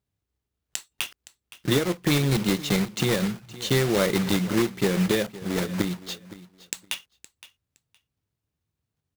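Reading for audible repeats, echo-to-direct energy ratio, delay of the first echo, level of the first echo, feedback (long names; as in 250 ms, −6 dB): 2, −17.5 dB, 516 ms, −17.5 dB, 18%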